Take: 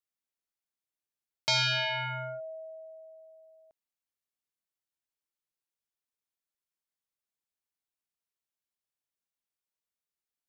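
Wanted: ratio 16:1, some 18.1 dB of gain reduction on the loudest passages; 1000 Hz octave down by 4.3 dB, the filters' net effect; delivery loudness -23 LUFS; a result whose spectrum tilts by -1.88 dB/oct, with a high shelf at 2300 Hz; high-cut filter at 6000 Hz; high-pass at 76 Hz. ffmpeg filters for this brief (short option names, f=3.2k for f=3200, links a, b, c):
-af "highpass=76,lowpass=6k,equalizer=f=1k:t=o:g=-4,highshelf=f=2.3k:g=-7,acompressor=threshold=-47dB:ratio=16,volume=27dB"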